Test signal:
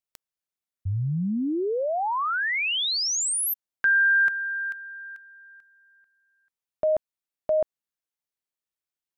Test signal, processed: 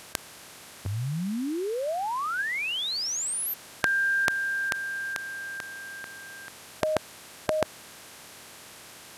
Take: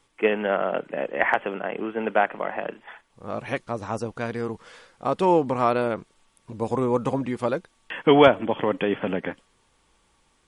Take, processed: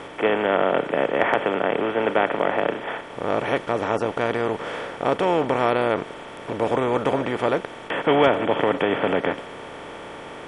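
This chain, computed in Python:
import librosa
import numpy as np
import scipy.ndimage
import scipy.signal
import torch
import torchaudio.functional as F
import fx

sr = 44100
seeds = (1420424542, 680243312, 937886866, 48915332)

y = fx.bin_compress(x, sr, power=0.4)
y = y * librosa.db_to_amplitude(-5.5)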